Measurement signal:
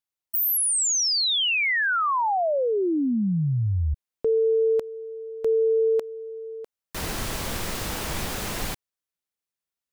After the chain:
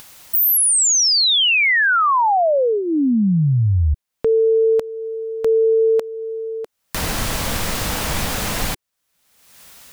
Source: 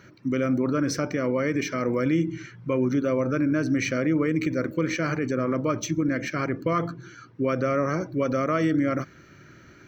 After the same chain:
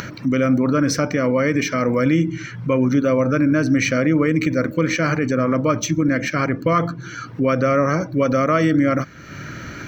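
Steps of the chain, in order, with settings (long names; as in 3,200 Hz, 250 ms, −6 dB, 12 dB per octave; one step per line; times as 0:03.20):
parametric band 370 Hz −8.5 dB 0.26 octaves
in parallel at +3 dB: upward compression 4 to 1, threshold −28 dBFS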